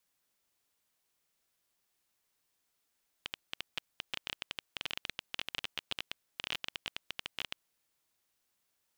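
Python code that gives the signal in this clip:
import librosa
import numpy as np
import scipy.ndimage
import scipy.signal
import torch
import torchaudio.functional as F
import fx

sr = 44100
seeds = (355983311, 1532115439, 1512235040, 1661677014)

y = fx.geiger_clicks(sr, seeds[0], length_s=4.48, per_s=15.0, level_db=-18.0)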